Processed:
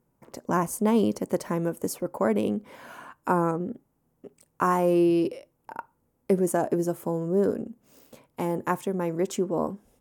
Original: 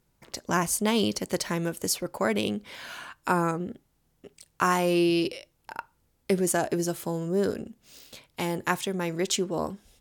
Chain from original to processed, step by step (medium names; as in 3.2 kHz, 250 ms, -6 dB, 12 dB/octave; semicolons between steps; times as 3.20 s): ten-band graphic EQ 125 Hz +6 dB, 250 Hz +10 dB, 500 Hz +8 dB, 1 kHz +8 dB, 4 kHz -9 dB, 16 kHz +5 dB; trim -8 dB